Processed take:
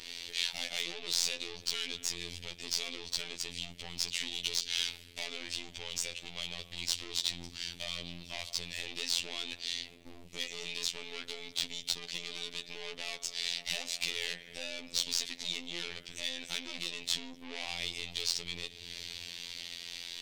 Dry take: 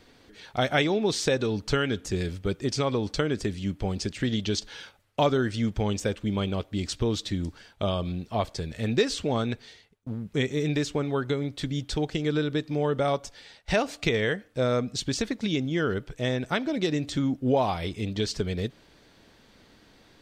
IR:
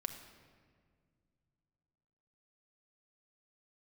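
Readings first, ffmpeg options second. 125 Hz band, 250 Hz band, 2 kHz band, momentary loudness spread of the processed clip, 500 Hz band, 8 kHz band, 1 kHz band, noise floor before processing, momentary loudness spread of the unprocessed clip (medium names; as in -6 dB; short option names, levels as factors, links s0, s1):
-24.5 dB, -23.5 dB, -6.5 dB, 9 LU, -22.0 dB, +2.0 dB, -19.0 dB, -58 dBFS, 7 LU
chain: -filter_complex "[0:a]asplit=2[s0][s1];[1:a]atrim=start_sample=2205,lowpass=2700[s2];[s1][s2]afir=irnorm=-1:irlink=0,volume=0.316[s3];[s0][s3]amix=inputs=2:normalize=0,acompressor=threshold=0.0112:ratio=4,aeval=exprs='(tanh(178*val(0)+0.7)-tanh(0.7))/178':c=same,aexciter=amount=12.9:drive=2.6:freq=2200,lowshelf=f=110:g=8.5,asplit=2[s4][s5];[s5]highpass=f=720:p=1,volume=3.98,asoftclip=type=tanh:threshold=0.15[s6];[s4][s6]amix=inputs=2:normalize=0,lowpass=f=2200:p=1,volume=0.501,afftfilt=real='hypot(re,im)*cos(PI*b)':imag='0':win_size=2048:overlap=0.75,adynamicequalizer=threshold=0.00316:dfrequency=2000:dqfactor=0.7:tfrequency=2000:tqfactor=0.7:attack=5:release=100:ratio=0.375:range=2:mode=boostabove:tftype=highshelf"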